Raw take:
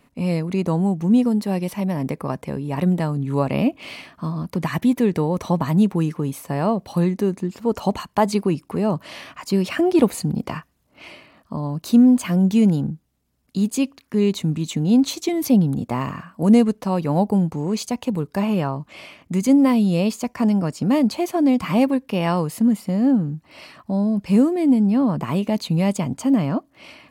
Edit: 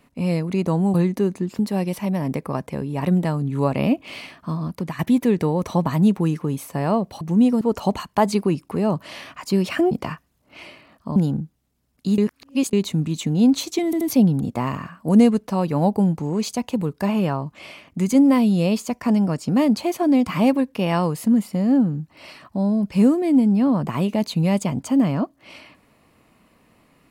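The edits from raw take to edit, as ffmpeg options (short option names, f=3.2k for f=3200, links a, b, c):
-filter_complex "[0:a]asplit=12[a][b][c][d][e][f][g][h][i][j][k][l];[a]atrim=end=0.942[m];[b]atrim=start=6.958:end=7.612[n];[c]atrim=start=1.338:end=4.74,asetpts=PTS-STARTPTS,afade=t=out:st=3.092:d=0.31:silence=0.316228[o];[d]atrim=start=4.74:end=6.962,asetpts=PTS-STARTPTS,afade=t=in:d=0.004:c=hsin:silence=0.316228[p];[e]atrim=start=0.938:end=1.342[q];[f]atrim=start=7.608:end=9.912[r];[g]atrim=start=10.358:end=11.612[s];[h]atrim=start=12.658:end=13.682[t];[i]atrim=start=13.678:end=14.232,asetpts=PTS-STARTPTS,areverse[u];[j]atrim=start=14.228:end=15.432[v];[k]atrim=start=15.348:end=15.432[w];[l]atrim=start=15.348[x];[m][n]acrossfade=d=0.004:c1=hsin:c2=hsin[y];[o][p]concat=n=2:v=0:a=1[z];[y][z]acrossfade=d=0.004:c1=hsin:c2=hsin[aa];[aa][q]acrossfade=d=0.004:c1=hsin:c2=hsin[ab];[ab][r]acrossfade=d=0.004:c1=hsin:c2=hsin[ac];[ac][s]acrossfade=d=0.004:c1=hsin:c2=hsin[ad];[ad][t]acrossfade=d=0.004:c1=hsin:c2=hsin[ae];[ae][u]acrossfade=d=0.004:c1=hsin:c2=hsin[af];[af][v]acrossfade=d=0.004:c1=hsin:c2=hsin[ag];[ag][w]acrossfade=d=0.004:c1=hsin:c2=hsin[ah];[ah][x]acrossfade=d=0.004:c1=hsin:c2=hsin"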